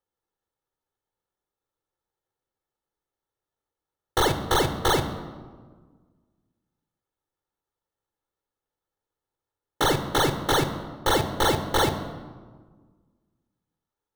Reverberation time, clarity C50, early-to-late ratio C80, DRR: 1.5 s, 10.5 dB, 12.0 dB, 8.0 dB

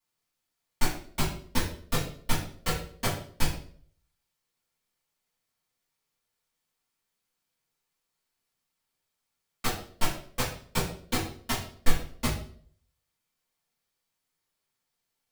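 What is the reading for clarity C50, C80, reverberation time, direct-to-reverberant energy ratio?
6.0 dB, 10.0 dB, 0.55 s, -10.0 dB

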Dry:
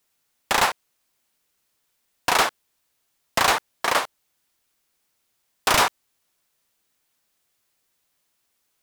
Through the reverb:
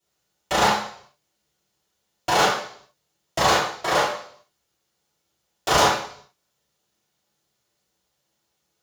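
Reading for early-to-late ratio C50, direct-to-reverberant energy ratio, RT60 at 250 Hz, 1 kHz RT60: 3.0 dB, -9.5 dB, 0.55 s, 0.55 s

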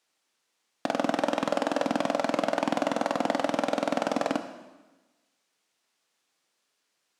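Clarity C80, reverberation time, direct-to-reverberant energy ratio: 11.5 dB, 1.2 s, 7.5 dB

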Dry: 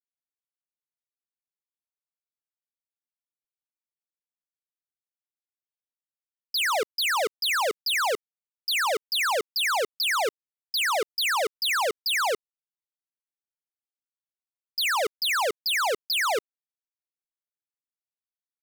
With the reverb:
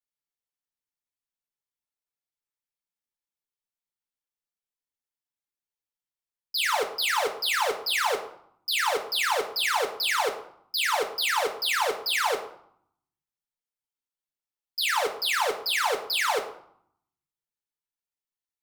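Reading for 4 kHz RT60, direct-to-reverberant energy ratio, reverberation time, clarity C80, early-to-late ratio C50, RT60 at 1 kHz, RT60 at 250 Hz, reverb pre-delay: 0.45 s, 2.0 dB, 0.65 s, 13.0 dB, 9.5 dB, 0.70 s, 0.95 s, 6 ms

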